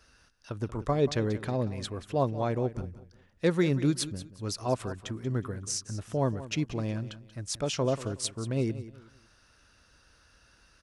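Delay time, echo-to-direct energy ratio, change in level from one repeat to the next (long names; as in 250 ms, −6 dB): 184 ms, −14.5 dB, −11.0 dB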